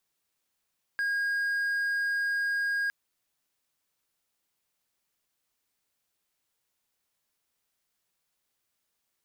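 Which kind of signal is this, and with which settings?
tone triangle 1.63 kHz -24 dBFS 1.91 s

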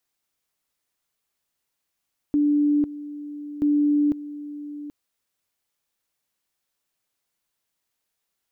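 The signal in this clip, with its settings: two-level tone 293 Hz -16.5 dBFS, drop 15.5 dB, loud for 0.50 s, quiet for 0.78 s, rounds 2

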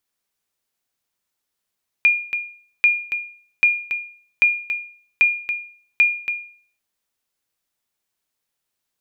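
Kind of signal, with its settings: sonar ping 2.42 kHz, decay 0.49 s, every 0.79 s, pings 6, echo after 0.28 s, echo -9 dB -7.5 dBFS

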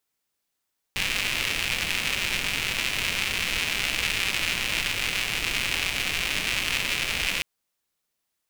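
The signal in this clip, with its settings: rain from filtered ticks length 6.46 s, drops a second 240, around 2.5 kHz, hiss -8 dB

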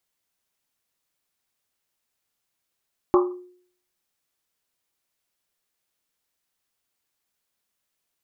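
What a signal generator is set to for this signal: Risset drum, pitch 360 Hz, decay 0.58 s, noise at 1.1 kHz, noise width 260 Hz, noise 25%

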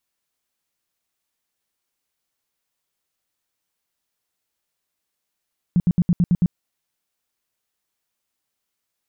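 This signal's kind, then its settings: tone bursts 175 Hz, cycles 7, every 0.11 s, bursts 7, -12.5 dBFS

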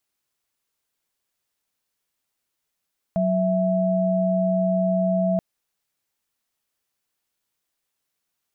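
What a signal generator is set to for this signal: chord F#3/E5 sine, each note -21 dBFS 2.23 s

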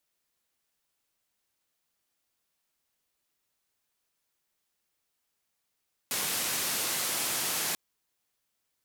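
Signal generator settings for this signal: noise band 130–14000 Hz, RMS -31 dBFS 1.64 s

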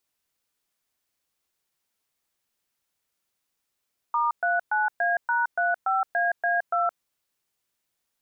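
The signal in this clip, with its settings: DTMF "*39A#35AA2", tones 169 ms, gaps 118 ms, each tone -23.5 dBFS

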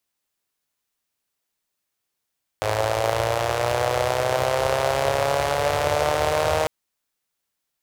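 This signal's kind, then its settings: four-cylinder engine model, changing speed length 4.05 s, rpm 3200, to 4700, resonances 91/570 Hz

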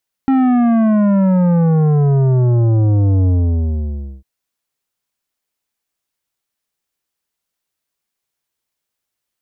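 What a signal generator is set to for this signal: sub drop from 270 Hz, over 3.95 s, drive 11 dB, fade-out 0.96 s, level -11 dB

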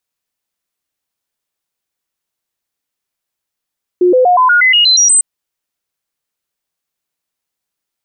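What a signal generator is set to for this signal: stepped sine 359 Hz up, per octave 2, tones 10, 0.12 s, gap 0.00 s -5.5 dBFS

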